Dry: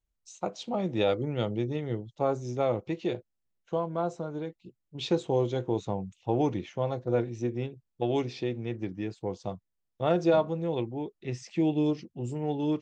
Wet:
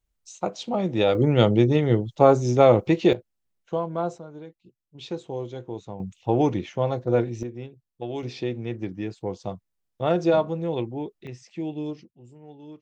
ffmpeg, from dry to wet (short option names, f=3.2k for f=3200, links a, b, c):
-af "asetnsamples=n=441:p=0,asendcmd='1.15 volume volume 12dB;3.13 volume volume 3dB;4.18 volume volume -5.5dB;6 volume volume 5.5dB;7.43 volume volume -4dB;8.23 volume volume 3dB;11.27 volume volume -5dB;12.11 volume volume -15dB',volume=5dB"